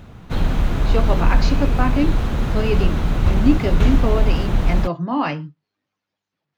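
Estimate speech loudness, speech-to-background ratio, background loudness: −24.0 LKFS, −3.0 dB, −21.0 LKFS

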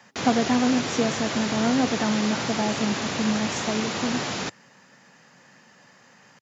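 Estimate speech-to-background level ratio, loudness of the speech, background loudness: 2.0 dB, −26.0 LKFS, −28.0 LKFS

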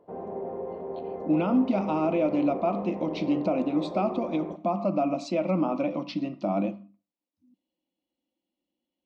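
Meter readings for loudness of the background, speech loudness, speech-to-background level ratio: −36.5 LKFS, −27.5 LKFS, 9.0 dB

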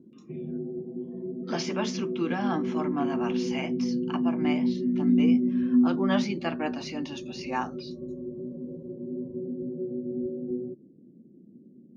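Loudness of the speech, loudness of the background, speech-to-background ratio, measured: −33.0 LKFS, −29.5 LKFS, −3.5 dB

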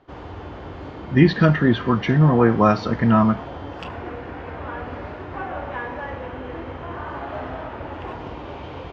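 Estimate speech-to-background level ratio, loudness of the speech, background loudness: 16.0 dB, −17.5 LKFS, −33.5 LKFS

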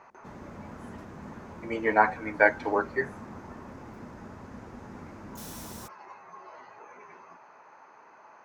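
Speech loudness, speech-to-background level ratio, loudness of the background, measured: −26.5 LKFS, 18.5 dB, −45.0 LKFS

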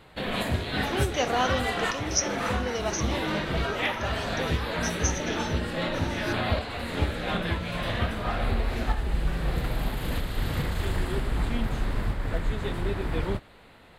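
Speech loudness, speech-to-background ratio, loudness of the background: −32.0 LKFS, −2.5 dB, −29.5 LKFS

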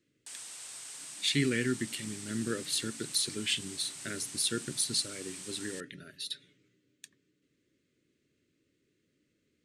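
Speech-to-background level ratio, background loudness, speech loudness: 9.5 dB, −42.5 LKFS, −33.0 LKFS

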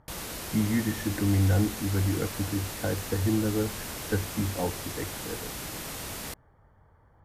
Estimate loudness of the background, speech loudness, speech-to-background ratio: −36.0 LKFS, −29.5 LKFS, 6.5 dB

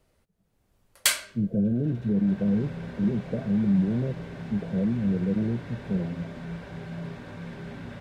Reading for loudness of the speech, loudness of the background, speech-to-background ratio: −27.5 LKFS, −34.5 LKFS, 7.0 dB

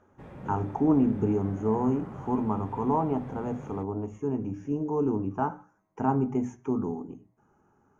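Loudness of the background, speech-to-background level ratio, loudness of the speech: −43.0 LKFS, 14.0 dB, −29.0 LKFS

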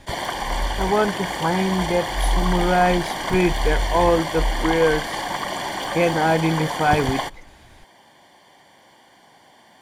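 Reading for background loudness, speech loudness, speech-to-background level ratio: −26.5 LKFS, −21.5 LKFS, 5.0 dB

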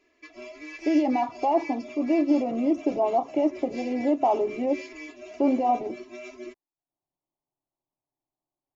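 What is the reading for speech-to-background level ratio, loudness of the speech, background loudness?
16.0 dB, −25.5 LKFS, −41.5 LKFS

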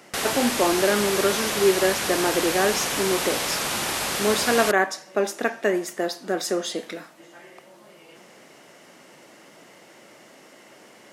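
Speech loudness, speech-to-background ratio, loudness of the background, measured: −24.5 LKFS, 0.5 dB, −25.0 LKFS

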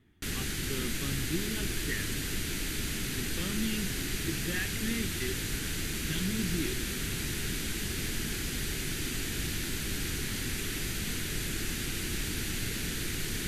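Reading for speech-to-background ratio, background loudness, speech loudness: −5.0 dB, −33.5 LKFS, −38.5 LKFS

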